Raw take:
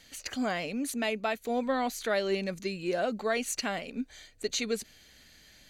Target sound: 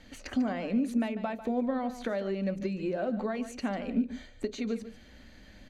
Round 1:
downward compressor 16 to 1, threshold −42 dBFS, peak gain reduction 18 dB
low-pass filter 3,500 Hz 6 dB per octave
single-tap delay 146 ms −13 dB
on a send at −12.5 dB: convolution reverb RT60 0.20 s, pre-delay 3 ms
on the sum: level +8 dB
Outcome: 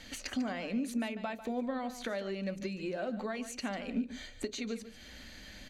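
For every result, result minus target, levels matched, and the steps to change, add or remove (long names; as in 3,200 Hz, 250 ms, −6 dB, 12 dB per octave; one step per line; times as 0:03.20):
4,000 Hz band +8.5 dB; downward compressor: peak gain reduction +6 dB
change: low-pass filter 940 Hz 6 dB per octave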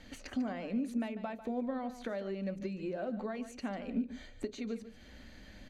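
downward compressor: peak gain reduction +6 dB
change: downward compressor 16 to 1, threshold −35.5 dBFS, peak gain reduction 12 dB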